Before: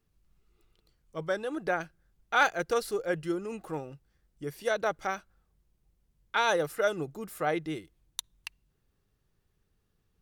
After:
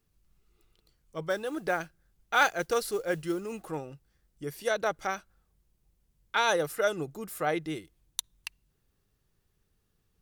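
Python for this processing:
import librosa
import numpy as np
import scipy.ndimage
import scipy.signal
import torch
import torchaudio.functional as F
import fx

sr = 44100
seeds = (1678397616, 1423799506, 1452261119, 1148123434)

y = fx.high_shelf(x, sr, hz=4500.0, db=5.0)
y = fx.mod_noise(y, sr, seeds[0], snr_db=26, at=(1.29, 3.7))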